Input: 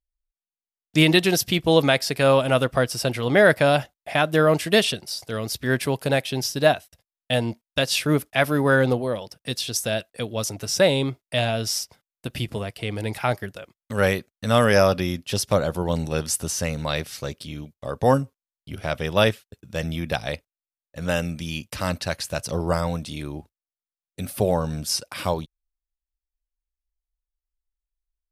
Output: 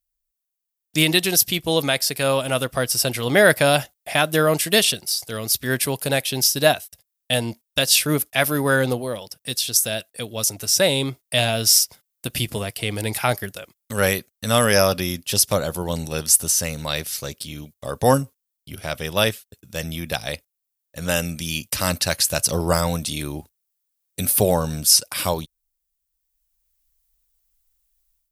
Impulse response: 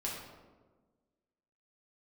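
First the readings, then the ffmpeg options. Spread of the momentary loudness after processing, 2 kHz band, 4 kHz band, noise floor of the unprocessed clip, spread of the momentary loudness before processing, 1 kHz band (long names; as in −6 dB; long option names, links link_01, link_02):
14 LU, +1.5 dB, +5.0 dB, below −85 dBFS, 14 LU, +0.5 dB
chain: -af "aemphasis=mode=production:type=75kf,dynaudnorm=framelen=670:gausssize=3:maxgain=11.5dB,volume=-1dB"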